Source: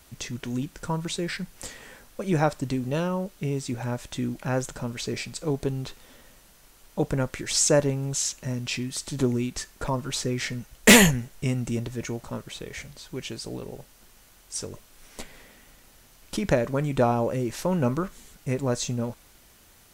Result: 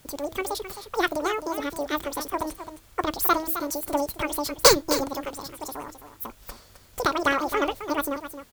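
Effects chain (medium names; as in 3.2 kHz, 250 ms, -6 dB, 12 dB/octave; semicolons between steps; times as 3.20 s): de-hum 137.4 Hz, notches 2; on a send: delay 615 ms -11 dB; on the sum: speed mistake 33 rpm record played at 78 rpm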